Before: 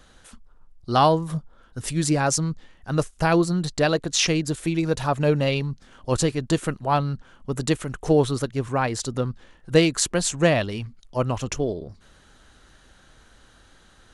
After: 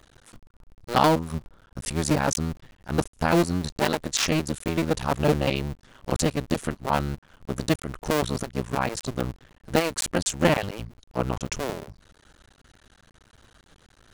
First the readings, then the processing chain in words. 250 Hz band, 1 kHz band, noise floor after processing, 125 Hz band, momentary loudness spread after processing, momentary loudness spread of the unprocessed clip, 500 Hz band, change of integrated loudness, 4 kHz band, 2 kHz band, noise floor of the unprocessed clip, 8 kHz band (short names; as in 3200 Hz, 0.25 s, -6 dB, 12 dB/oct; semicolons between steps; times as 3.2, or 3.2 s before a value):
-2.5 dB, -2.0 dB, -61 dBFS, -4.0 dB, 13 LU, 12 LU, -3.5 dB, -3.0 dB, -2.5 dB, -1.5 dB, -55 dBFS, -3.5 dB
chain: cycle switcher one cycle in 2, muted